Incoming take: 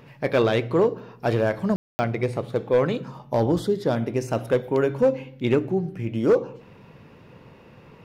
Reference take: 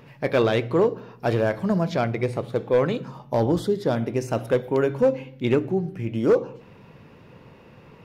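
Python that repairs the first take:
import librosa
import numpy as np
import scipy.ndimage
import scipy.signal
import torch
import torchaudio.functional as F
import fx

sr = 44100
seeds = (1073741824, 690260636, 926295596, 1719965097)

y = fx.fix_ambience(x, sr, seeds[0], print_start_s=7.49, print_end_s=7.99, start_s=1.76, end_s=1.99)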